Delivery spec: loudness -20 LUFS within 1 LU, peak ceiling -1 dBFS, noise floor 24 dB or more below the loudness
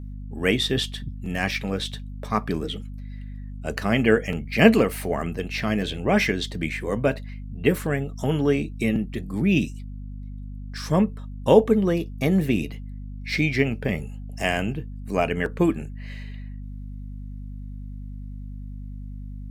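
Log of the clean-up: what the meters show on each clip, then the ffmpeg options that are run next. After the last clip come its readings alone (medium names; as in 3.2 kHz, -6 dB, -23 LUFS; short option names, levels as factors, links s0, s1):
hum 50 Hz; highest harmonic 250 Hz; hum level -33 dBFS; loudness -24.0 LUFS; peak level -2.0 dBFS; loudness target -20.0 LUFS
-> -af "bandreject=f=50:t=h:w=4,bandreject=f=100:t=h:w=4,bandreject=f=150:t=h:w=4,bandreject=f=200:t=h:w=4,bandreject=f=250:t=h:w=4"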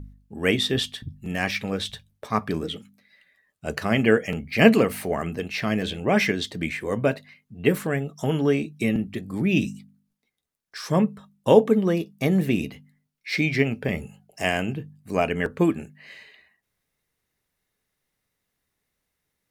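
hum not found; loudness -24.0 LUFS; peak level -2.0 dBFS; loudness target -20.0 LUFS
-> -af "volume=1.58,alimiter=limit=0.891:level=0:latency=1"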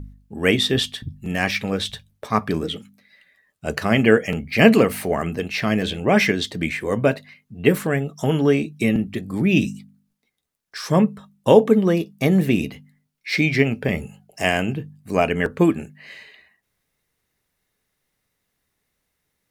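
loudness -20.5 LUFS; peak level -1.0 dBFS; noise floor -76 dBFS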